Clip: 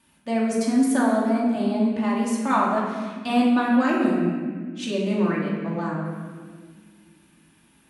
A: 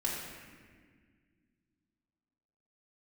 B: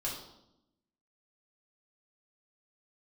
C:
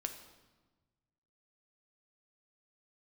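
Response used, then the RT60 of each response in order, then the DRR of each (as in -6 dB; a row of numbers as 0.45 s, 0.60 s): A; 1.7 s, 0.85 s, 1.3 s; -5.0 dB, -5.5 dB, 5.5 dB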